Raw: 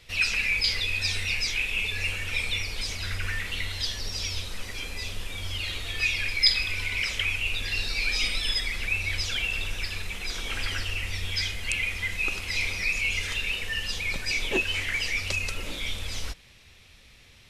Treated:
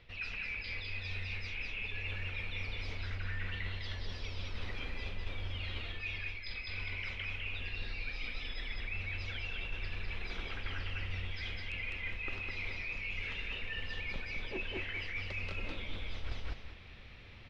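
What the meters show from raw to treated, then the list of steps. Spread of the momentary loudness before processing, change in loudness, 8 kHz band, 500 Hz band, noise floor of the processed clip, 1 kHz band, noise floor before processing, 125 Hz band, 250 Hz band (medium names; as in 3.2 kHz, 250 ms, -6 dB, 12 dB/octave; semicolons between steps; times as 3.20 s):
9 LU, -12.5 dB, under -25 dB, -8.5 dB, -49 dBFS, -8.0 dB, -53 dBFS, -5.5 dB, -7.5 dB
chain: feedback delay 205 ms, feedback 20%, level -4 dB; reverse; compression 10:1, threshold -35 dBFS, peak gain reduction 19.5 dB; reverse; distance through air 330 m; trim +2.5 dB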